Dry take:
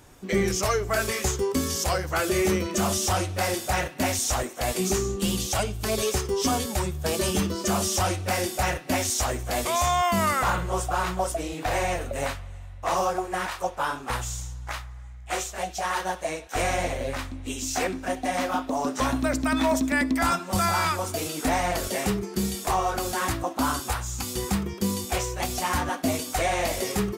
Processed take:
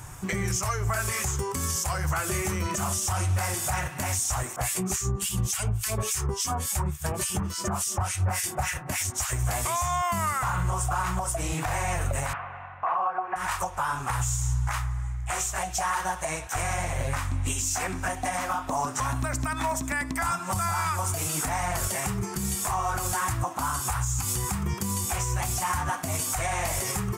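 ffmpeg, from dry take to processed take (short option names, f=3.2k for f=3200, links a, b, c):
-filter_complex "[0:a]asettb=1/sr,asplit=3[a][b][c];[a]atrim=end=4.564[d];[b]atrim=start=4.56:end=9.33,asetpts=PTS-STARTPTS,afade=t=in:d=0.004:c=qsin,afade=t=out:st=4.766:d=0.004:c=qsin,acrossover=split=1600[e][f];[e]aeval=exprs='val(0)*(1-1/2+1/2*cos(2*PI*3.5*n/s))':c=same[g];[f]aeval=exprs='val(0)*(1-1/2-1/2*cos(2*PI*3.5*n/s))':c=same[h];[g][h]amix=inputs=2:normalize=0[i];[c]atrim=start=9.326[j];[d][i]acrossfade=d=0.004:c1=hsin:c2=qsin[k];[k][j]acrossfade=d=0.004:c1=qsin:c2=hsin,asettb=1/sr,asplit=3[l][m][n];[l]atrim=end=12.334[o];[m]atrim=start=12.33:end=13.36,asetpts=PTS-STARTPTS,afade=t=in:d=0.004:c=qsin,afade=t=out:st=1.026:d=0.004:c=qsin,highpass=270,equalizer=f=270:t=q:w=4:g=5,equalizer=f=470:t=q:w=4:g=5,equalizer=f=740:t=q:w=4:g=9,equalizer=f=1.1k:t=q:w=4:g=8,equalizer=f=1.5k:t=q:w=4:g=7,equalizer=f=2.6k:t=q:w=4:g=4,lowpass=f=2.7k:w=0.5412,lowpass=f=2.7k:w=1.3066[p];[n]atrim=start=13.356[q];[o][p]acrossfade=d=0.004:c1=hsin:c2=qsin[r];[r][q]acrossfade=d=0.004:c1=qsin:c2=hsin,acompressor=threshold=-29dB:ratio=6,equalizer=f=125:t=o:w=1:g=10,equalizer=f=250:t=o:w=1:g=-10,equalizer=f=500:t=o:w=1:g=-9,equalizer=f=1k:t=o:w=1:g=5,equalizer=f=4k:t=o:w=1:g=-8,equalizer=f=8k:t=o:w=1:g=6,alimiter=level_in=2.5dB:limit=-24dB:level=0:latency=1:release=153,volume=-2.5dB,volume=8.5dB"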